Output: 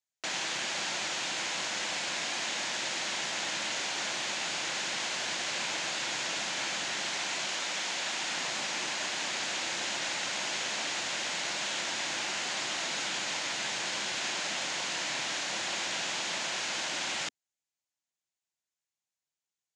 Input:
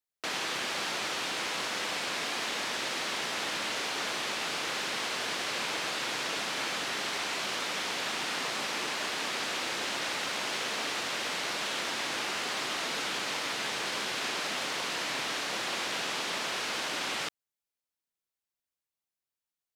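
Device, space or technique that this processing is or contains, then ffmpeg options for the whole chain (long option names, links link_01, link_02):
car door speaker: -filter_complex "[0:a]highpass=94,equalizer=frequency=260:width_type=q:width=4:gain=-5,equalizer=frequency=440:width_type=q:width=4:gain=-9,equalizer=frequency=1200:width_type=q:width=4:gain=-6,equalizer=frequency=6800:width_type=q:width=4:gain=7,lowpass=frequency=8400:width=0.5412,lowpass=frequency=8400:width=1.3066,asettb=1/sr,asplit=3[link_01][link_02][link_03];[link_01]atrim=end=7.454[link_04];[link_02]atrim=start=7.45:end=8.3,asetpts=PTS-STARTPTS,afade=type=in:duration=0.004:curve=qsin,afade=type=out:start_time=0.846:duration=0.004:curve=qsin,highpass=frequency=210:poles=1[link_05];[link_03]atrim=start=8.296[link_06];[link_04][link_05]acrossfade=duration=0.004:curve1=hsin:curve2=qsin[link_07];[link_07][link_06]acrossfade=duration=0.004:curve1=qsin:curve2=hsin"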